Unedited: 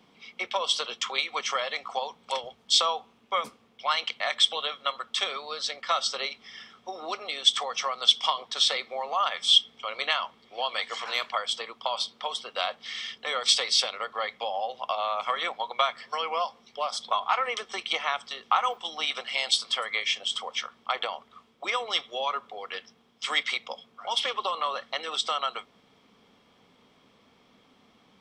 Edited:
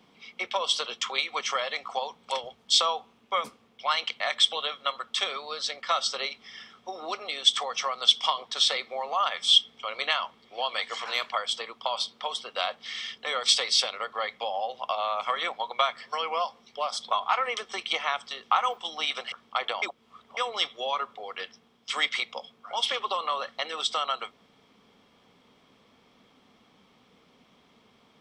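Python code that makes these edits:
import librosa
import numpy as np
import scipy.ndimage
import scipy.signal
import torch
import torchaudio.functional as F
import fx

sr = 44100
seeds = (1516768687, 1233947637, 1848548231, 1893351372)

y = fx.edit(x, sr, fx.cut(start_s=19.32, length_s=1.34),
    fx.reverse_span(start_s=21.16, length_s=0.55), tone=tone)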